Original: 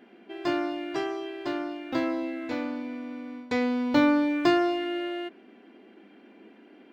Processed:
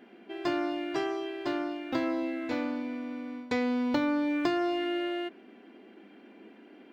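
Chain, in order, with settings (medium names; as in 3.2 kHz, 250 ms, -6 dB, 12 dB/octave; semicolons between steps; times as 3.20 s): compression 6:1, threshold -25 dBFS, peak gain reduction 8.5 dB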